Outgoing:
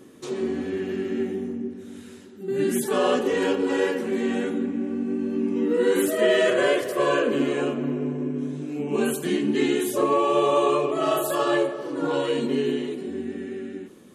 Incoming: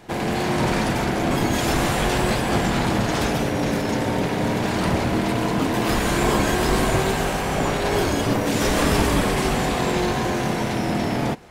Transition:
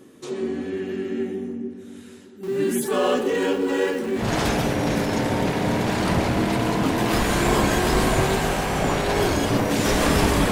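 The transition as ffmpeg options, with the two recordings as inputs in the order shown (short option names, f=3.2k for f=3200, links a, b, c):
-filter_complex "[0:a]asettb=1/sr,asplit=3[a][b][c];[a]atrim=end=2.434[d];[b]atrim=start=2.43:end=4.3,asetpts=PTS-STARTPTS,afade=t=in:d=0.004:c=qsin,afade=t=out:st=1.866:d=0.004:c=qsin,aeval=exprs='val(0)+0.5*0.0178*sgn(val(0))':c=same[e];[c]atrim=start=4.296[f];[d][e]acrossfade=d=0.004:c1=hsin:c2=qsin[g];[g][f]acrossfade=d=0.004:c1=qsin:c2=hsin,apad=whole_dur=10.51,atrim=end=10.51,atrim=end=4.3,asetpts=PTS-STARTPTS[h];[1:a]atrim=start=2.9:end=9.27,asetpts=PTS-STARTPTS[i];[h][i]acrossfade=d=0.16:c1=tri:c2=tri"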